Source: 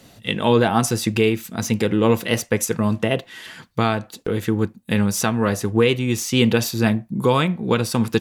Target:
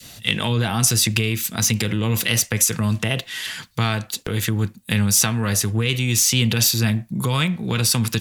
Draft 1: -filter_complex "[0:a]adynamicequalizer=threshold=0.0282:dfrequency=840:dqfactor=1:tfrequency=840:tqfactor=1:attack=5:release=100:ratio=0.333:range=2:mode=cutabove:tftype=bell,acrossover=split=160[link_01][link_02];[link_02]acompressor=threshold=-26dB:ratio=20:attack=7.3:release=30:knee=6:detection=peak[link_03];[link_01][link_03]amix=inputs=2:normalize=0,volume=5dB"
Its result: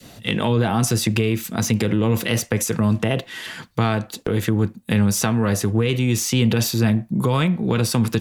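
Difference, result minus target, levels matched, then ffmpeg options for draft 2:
1,000 Hz band +3.0 dB
-filter_complex "[0:a]adynamicequalizer=threshold=0.0282:dfrequency=840:dqfactor=1:tfrequency=840:tqfactor=1:attack=5:release=100:ratio=0.333:range=2:mode=cutabove:tftype=bell,acrossover=split=160[link_01][link_02];[link_02]acompressor=threshold=-26dB:ratio=20:attack=7.3:release=30:knee=6:detection=peak,tiltshelf=frequency=1400:gain=-8[link_03];[link_01][link_03]amix=inputs=2:normalize=0,volume=5dB"

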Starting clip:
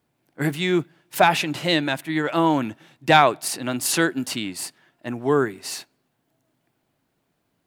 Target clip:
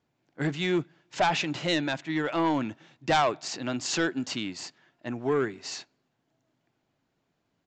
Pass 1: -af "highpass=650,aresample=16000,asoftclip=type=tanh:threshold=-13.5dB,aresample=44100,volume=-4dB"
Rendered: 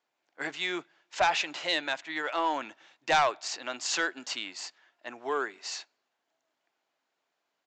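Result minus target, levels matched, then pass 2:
500 Hz band −2.5 dB
-af "aresample=16000,asoftclip=type=tanh:threshold=-13.5dB,aresample=44100,volume=-4dB"

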